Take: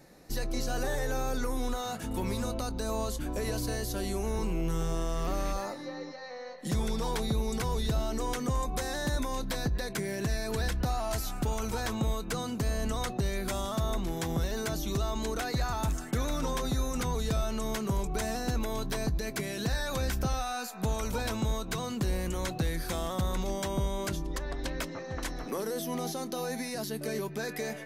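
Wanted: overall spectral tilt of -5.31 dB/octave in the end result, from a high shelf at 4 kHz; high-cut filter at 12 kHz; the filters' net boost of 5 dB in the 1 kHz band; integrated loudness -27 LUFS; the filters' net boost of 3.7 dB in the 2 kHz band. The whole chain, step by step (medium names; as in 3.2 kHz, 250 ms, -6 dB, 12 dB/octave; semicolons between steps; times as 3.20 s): low-pass 12 kHz; peaking EQ 1 kHz +6 dB; peaking EQ 2 kHz +3.5 dB; treble shelf 4 kHz -5 dB; trim +5 dB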